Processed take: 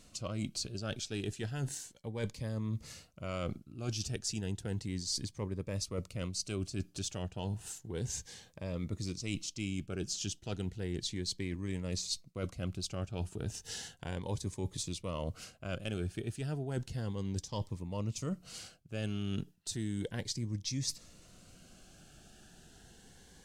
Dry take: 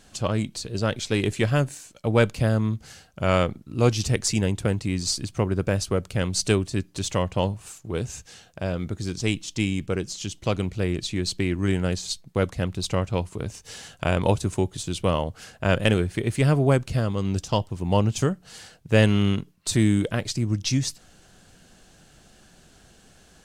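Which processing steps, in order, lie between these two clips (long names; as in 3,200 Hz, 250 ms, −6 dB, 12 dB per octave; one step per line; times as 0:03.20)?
dynamic equaliser 5,400 Hz, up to +5 dB, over −45 dBFS, Q 1.3
reversed playback
downward compressor 12 to 1, threshold −29 dBFS, peak gain reduction 17.5 dB
reversed playback
phaser whose notches keep moving one way rising 0.33 Hz
level −3.5 dB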